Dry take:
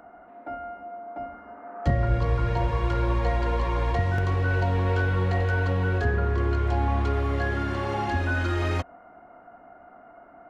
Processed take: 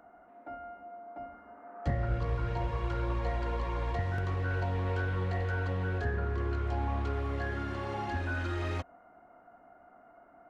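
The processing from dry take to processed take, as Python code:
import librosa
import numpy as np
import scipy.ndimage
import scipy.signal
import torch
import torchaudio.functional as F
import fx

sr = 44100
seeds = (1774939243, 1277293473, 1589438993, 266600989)

y = fx.doppler_dist(x, sr, depth_ms=0.17)
y = y * librosa.db_to_amplitude(-8.0)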